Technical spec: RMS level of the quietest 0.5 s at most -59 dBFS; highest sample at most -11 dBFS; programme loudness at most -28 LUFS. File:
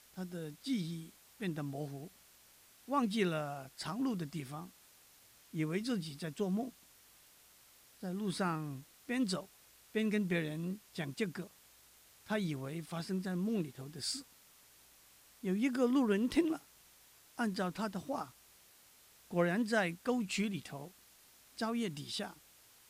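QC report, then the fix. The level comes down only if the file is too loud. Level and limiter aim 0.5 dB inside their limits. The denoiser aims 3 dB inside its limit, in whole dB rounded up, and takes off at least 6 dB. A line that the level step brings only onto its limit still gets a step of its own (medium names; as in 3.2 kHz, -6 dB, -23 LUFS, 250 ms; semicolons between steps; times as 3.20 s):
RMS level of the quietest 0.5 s -63 dBFS: pass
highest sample -18.5 dBFS: pass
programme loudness -37.5 LUFS: pass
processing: none needed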